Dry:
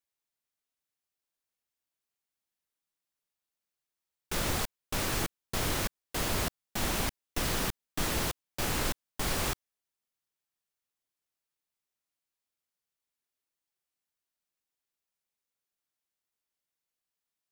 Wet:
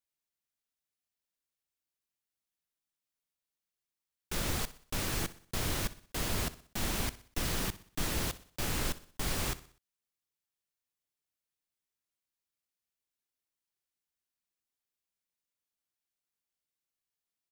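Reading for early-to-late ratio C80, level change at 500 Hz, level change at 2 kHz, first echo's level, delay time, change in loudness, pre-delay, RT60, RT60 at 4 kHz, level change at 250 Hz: no reverb audible, −4.5 dB, −3.5 dB, −17.0 dB, 62 ms, −2.5 dB, no reverb audible, no reverb audible, no reverb audible, −2.5 dB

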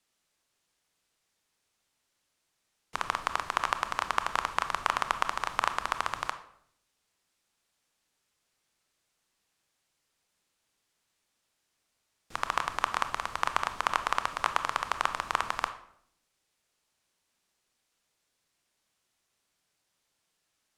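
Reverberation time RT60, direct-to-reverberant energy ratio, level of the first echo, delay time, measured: 0.65 s, 9.5 dB, no echo audible, no echo audible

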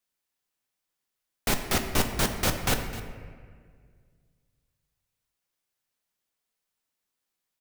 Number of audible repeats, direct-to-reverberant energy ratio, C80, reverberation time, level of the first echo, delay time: 1, 5.0 dB, 8.0 dB, 1.8 s, −16.0 dB, 258 ms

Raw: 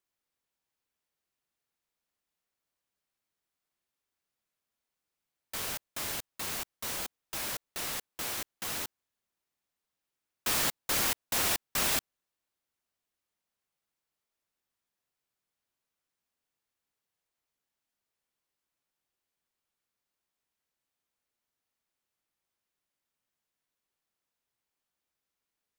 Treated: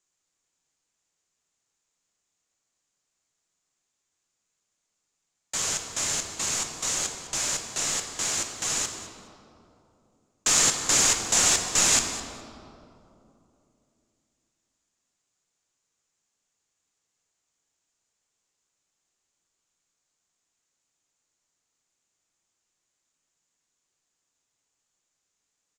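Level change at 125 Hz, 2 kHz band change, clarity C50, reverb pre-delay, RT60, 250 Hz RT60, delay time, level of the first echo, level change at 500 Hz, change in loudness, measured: +6.0 dB, +5.5 dB, 6.0 dB, 6 ms, 2.8 s, 3.4 s, 208 ms, −16.0 dB, +5.5 dB, +8.0 dB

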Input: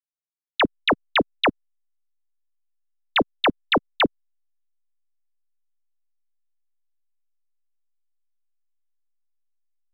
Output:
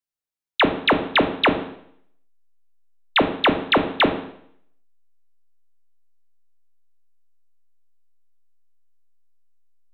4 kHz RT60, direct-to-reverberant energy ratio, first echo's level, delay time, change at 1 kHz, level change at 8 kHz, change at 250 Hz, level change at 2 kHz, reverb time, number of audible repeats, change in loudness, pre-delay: 0.65 s, 7.5 dB, no echo audible, no echo audible, +3.0 dB, can't be measured, +4.0 dB, +2.5 dB, 0.65 s, no echo audible, +2.5 dB, 11 ms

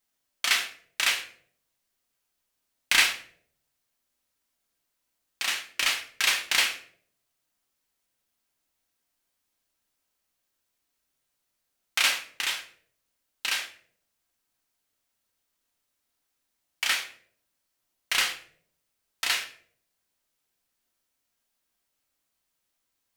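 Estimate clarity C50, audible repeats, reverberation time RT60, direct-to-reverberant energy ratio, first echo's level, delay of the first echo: 11.0 dB, no echo audible, 0.60 s, 3.5 dB, no echo audible, no echo audible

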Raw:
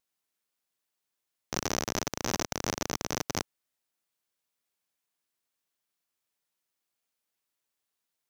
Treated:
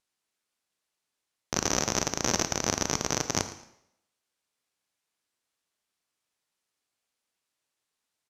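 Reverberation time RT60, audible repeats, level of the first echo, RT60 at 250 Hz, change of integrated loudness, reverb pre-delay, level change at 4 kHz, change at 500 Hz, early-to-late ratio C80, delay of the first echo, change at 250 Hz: 0.80 s, 2, −17.5 dB, 0.75 s, +5.0 dB, 22 ms, +4.5 dB, +3.5 dB, 13.0 dB, 112 ms, +3.0 dB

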